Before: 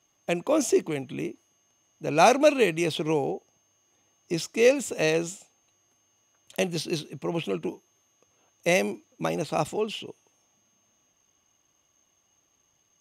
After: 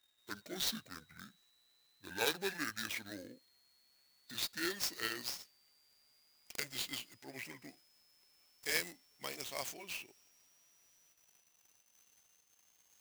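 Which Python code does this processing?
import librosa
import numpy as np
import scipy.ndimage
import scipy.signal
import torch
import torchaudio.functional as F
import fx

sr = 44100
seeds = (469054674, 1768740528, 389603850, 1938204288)

y = fx.pitch_glide(x, sr, semitones=-9.5, runs='ending unshifted')
y = scipy.signal.lfilter([1.0, -0.97], [1.0], y)
y = fx.clock_jitter(y, sr, seeds[0], jitter_ms=0.022)
y = F.gain(torch.from_numpy(y), 3.0).numpy()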